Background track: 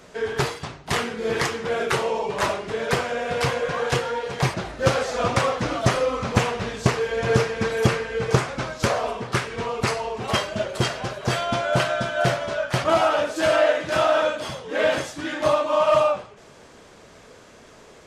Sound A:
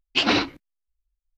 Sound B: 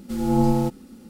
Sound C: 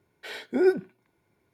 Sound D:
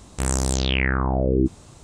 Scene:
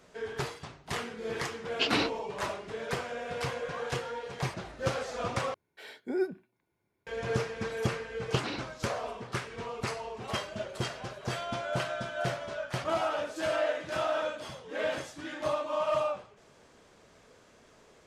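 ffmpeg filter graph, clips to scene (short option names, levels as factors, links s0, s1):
-filter_complex "[1:a]asplit=2[s0][s1];[0:a]volume=0.282,asplit=2[s2][s3];[s2]atrim=end=5.544[s4];[3:a]atrim=end=1.53,asetpts=PTS-STARTPTS,volume=0.355[s5];[s3]atrim=start=7.066[s6];[s0]atrim=end=1.37,asetpts=PTS-STARTPTS,volume=0.398,afade=t=in:d=0.004:c=hsin,afade=t=out:st=1.366:d=0.004:c=hsin,adelay=1640[s7];[s1]atrim=end=1.37,asetpts=PTS-STARTPTS,volume=0.141,afade=t=in:d=0.004:c=hsin,afade=t=out:st=1.366:d=0.004:c=hsin,adelay=8170[s8];[s4][s5]acrossfade=d=0.004:c1=hsin:c2=hsin[s9];[s9][s6]acrossfade=d=0.004:c1=hsin:c2=hsin[s10];[s10][s7][s8]amix=inputs=3:normalize=0"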